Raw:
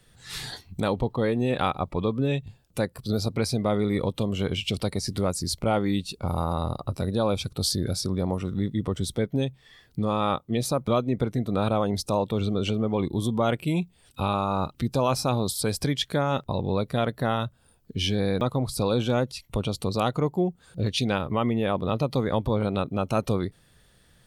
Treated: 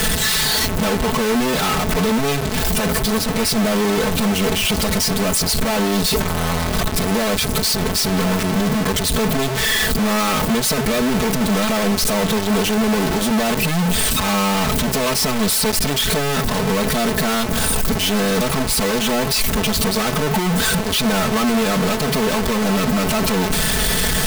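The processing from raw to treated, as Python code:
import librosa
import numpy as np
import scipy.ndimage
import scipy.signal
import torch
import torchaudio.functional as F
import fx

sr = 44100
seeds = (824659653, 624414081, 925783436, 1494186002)

y = np.sign(x) * np.sqrt(np.mean(np.square(x)))
y = y + 0.95 * np.pad(y, (int(4.6 * sr / 1000.0), 0))[:len(y)]
y = y * librosa.db_to_amplitude(6.0)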